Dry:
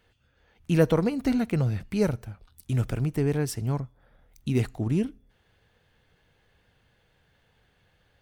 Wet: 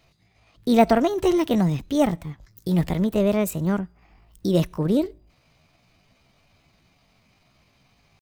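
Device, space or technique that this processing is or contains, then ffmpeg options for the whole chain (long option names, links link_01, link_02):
chipmunk voice: -filter_complex "[0:a]asetrate=62367,aresample=44100,atempo=0.707107,asettb=1/sr,asplit=3[link_01][link_02][link_03];[link_01]atrim=end=1.364[link_04];[link_02]atrim=start=1.36:end=1.86,asetpts=PTS-STARTPTS,afade=type=in:duration=0.004:curve=qsin,afade=type=out:start_time=0.496:duration=0.004:curve=qsin,highshelf=frequency=7600:gain=5.5[link_05];[link_03]atrim=start=1.856[link_06];[link_04][link_05]acrossfade=duration=0.004:curve1=hsin:curve2=qsin[link_07];[link_07][link_06]acrossfade=duration=0.004:curve1=qsin:curve2=hsin,volume=4.5dB"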